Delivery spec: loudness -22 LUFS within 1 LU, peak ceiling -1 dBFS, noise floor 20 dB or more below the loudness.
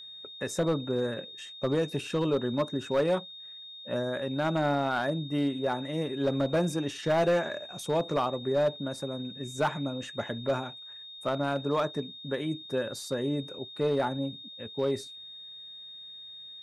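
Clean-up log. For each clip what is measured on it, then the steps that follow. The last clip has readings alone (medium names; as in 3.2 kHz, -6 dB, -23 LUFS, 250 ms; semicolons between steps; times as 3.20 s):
clipped samples 0.9%; clipping level -20.0 dBFS; steady tone 3.7 kHz; tone level -43 dBFS; loudness -30.5 LUFS; peak level -20.0 dBFS; loudness target -22.0 LUFS
-> clip repair -20 dBFS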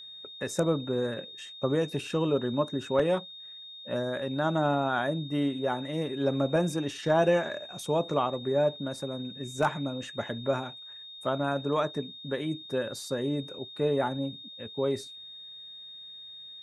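clipped samples 0.0%; steady tone 3.7 kHz; tone level -43 dBFS
-> band-stop 3.7 kHz, Q 30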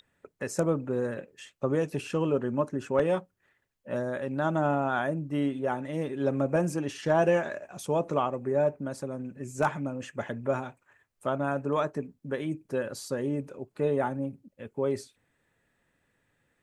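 steady tone not found; loudness -30.0 LUFS; peak level -11.0 dBFS; loudness target -22.0 LUFS
-> trim +8 dB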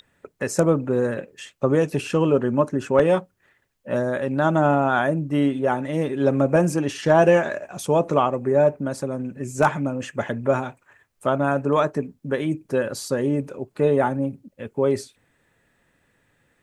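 loudness -22.0 LUFS; peak level -3.0 dBFS; noise floor -67 dBFS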